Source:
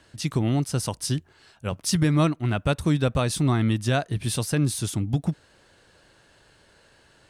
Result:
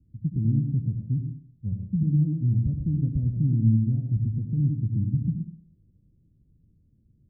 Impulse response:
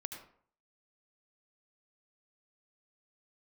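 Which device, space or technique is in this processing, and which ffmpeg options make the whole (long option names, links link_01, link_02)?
club heard from the street: -filter_complex "[0:a]alimiter=limit=-16.5dB:level=0:latency=1:release=108,lowpass=frequency=210:width=0.5412,lowpass=frequency=210:width=1.3066[link_01];[1:a]atrim=start_sample=2205[link_02];[link_01][link_02]afir=irnorm=-1:irlink=0,volume=6dB"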